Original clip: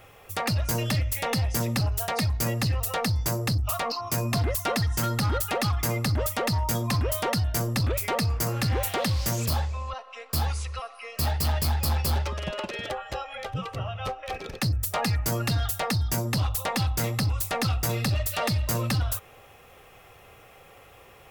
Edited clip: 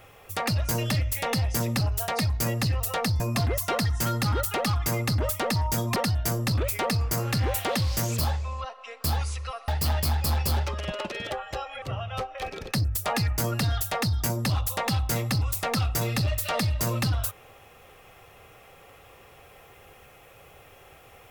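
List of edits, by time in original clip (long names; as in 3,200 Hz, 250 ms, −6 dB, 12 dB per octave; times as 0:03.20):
0:03.20–0:04.17: remove
0:06.93–0:07.25: remove
0:10.97–0:11.27: remove
0:13.41–0:13.70: remove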